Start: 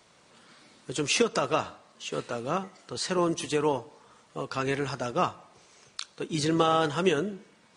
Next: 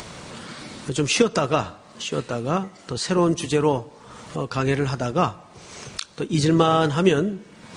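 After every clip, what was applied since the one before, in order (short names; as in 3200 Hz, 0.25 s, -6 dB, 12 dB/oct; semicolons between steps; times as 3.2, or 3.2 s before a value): low shelf 200 Hz +11 dB; upward compressor, threshold -29 dBFS; gain +4 dB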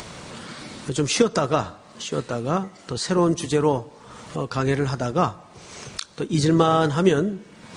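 dynamic EQ 2700 Hz, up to -6 dB, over -45 dBFS, Q 3.4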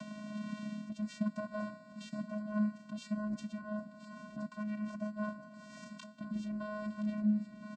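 reverse; compressor 6:1, threshold -29 dBFS, peak gain reduction 16.5 dB; reverse; vocoder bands 8, square 211 Hz; feedback echo 1.021 s, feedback 28%, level -13 dB; gain -3.5 dB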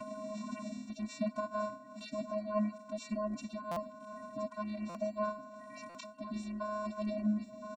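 bin magnitudes rounded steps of 30 dB; comb 3 ms, depth 88%; stuck buffer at 3.71/4.89/5.89, samples 256, times 9; gain +1 dB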